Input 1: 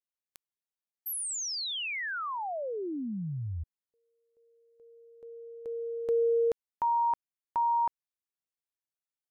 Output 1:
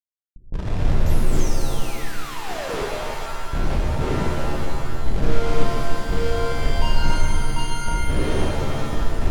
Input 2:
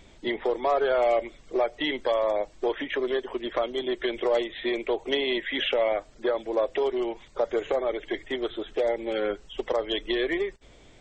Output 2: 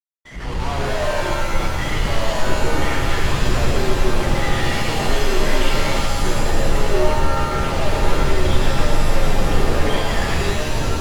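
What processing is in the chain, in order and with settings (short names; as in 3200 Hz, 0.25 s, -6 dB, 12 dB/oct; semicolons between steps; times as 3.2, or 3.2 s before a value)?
wind noise 180 Hz -30 dBFS; limiter -23.5 dBFS; bell 68 Hz +2.5 dB 0.22 oct; LFO high-pass saw down 0.71 Hz 330–2400 Hz; Schmitt trigger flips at -40.5 dBFS; low shelf 170 Hz +10.5 dB; gate -34 dBFS, range -45 dB; AGC gain up to 16 dB; Bessel low-pass 5100 Hz, order 2; shimmer reverb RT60 2.3 s, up +7 st, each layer -2 dB, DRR -2 dB; gain -12 dB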